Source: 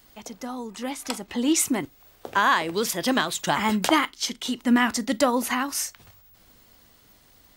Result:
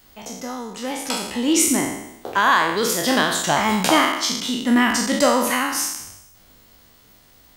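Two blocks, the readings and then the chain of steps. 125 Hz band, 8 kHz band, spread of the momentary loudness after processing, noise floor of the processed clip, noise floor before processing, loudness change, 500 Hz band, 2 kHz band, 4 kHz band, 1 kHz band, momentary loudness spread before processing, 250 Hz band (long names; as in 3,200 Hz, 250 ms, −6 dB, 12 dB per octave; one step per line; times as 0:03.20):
+5.0 dB, +6.5 dB, 15 LU, −52 dBFS, −57 dBFS, +5.0 dB, +5.5 dB, +5.0 dB, +6.0 dB, +5.0 dB, 12 LU, +3.5 dB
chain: peak hold with a decay on every bin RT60 0.87 s
level +1.5 dB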